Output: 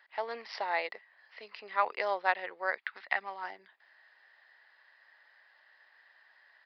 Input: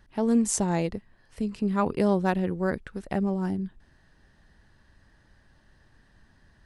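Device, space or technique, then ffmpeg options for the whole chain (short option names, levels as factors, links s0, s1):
musical greeting card: -filter_complex "[0:a]aresample=11025,aresample=44100,highpass=f=650:w=0.5412,highpass=f=650:w=1.3066,equalizer=f=2000:t=o:w=0.36:g=10,asettb=1/sr,asplit=3[s0][s1][s2];[s0]atrim=end=2.784[s3];[s1]atrim=start=2.78:end=3.44,asetpts=PTS-STARTPTS,afade=t=in:d=0.004:c=qsin,afade=t=out:st=0.656:d=0.004:c=qsin,equalizer=f=125:t=o:w=1:g=-11,equalizer=f=250:t=o:w=1:g=9,equalizer=f=500:t=o:w=1:g=-11,equalizer=f=1000:t=o:w=1:g=4,equalizer=f=2000:t=o:w=1:g=3,equalizer=f=4000:t=o:w=1:g=6,equalizer=f=8000:t=o:w=1:g=-8[s4];[s2]atrim=start=3.436[s5];[s3][s4]acrossfade=d=0.004:c1=hsin:c2=qsin[s6];[s6][s5]acrossfade=d=0.004:c1=qsin:c2=hsin"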